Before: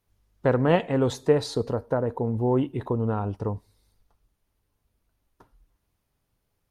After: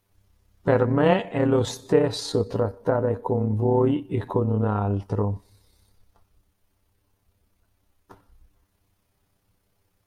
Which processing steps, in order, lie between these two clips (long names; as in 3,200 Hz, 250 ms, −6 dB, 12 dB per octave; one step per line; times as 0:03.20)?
in parallel at +2 dB: downward compressor, threshold −29 dBFS, peak gain reduction 14.5 dB
on the sum: time stretch by overlap-add 1.5×, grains 61 ms